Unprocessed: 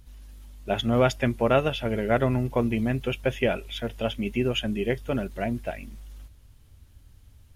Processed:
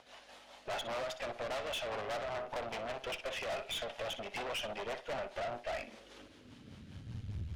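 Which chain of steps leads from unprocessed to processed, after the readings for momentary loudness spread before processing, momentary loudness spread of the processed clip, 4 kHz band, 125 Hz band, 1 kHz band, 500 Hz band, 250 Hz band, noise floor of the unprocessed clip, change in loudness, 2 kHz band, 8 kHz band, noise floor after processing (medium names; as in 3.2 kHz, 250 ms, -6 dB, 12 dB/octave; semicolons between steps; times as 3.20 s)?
11 LU, 17 LU, -7.0 dB, -19.0 dB, -9.0 dB, -13.0 dB, -24.0 dB, -54 dBFS, -13.5 dB, -9.0 dB, -3.5 dB, -58 dBFS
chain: in parallel at -11 dB: sine folder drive 17 dB, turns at -9.5 dBFS; on the sum: compression 16:1, threshold -29 dBFS, peak gain reduction 15.5 dB; peaking EQ 360 Hz -3 dB 0.74 oct; high-pass sweep 670 Hz -> 78 Hz, 5.72–7.54 s; rotary cabinet horn 5 Hz; low-pass 4.3 kHz 12 dB/octave; on a send: flutter echo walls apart 10.5 m, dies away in 0.28 s; on the sum: valve stage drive 38 dB, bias 0.7; trim +3 dB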